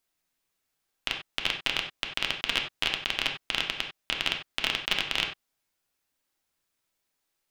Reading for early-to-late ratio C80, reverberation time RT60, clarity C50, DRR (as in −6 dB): 11.5 dB, non-exponential decay, 7.0 dB, 1.5 dB